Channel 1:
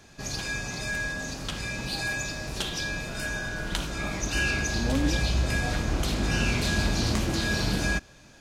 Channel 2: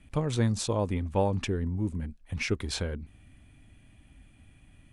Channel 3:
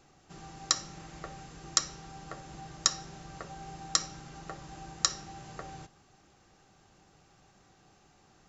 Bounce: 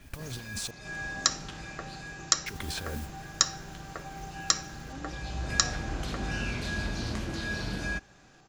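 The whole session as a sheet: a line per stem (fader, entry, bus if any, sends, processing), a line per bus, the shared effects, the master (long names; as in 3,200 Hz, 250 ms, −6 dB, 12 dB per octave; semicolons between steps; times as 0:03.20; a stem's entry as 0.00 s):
−7.5 dB, 0.00 s, no send, high-shelf EQ 9,000 Hz −11 dB; automatic ducking −13 dB, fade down 1.20 s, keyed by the second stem
−3.0 dB, 0.00 s, muted 0:00.71–0:02.46, no send, compressor whose output falls as the input rises −36 dBFS, ratio −1; noise that follows the level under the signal 13 dB
+2.0 dB, 0.55 s, no send, no processing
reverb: not used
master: parametric band 1,600 Hz +4 dB 0.29 octaves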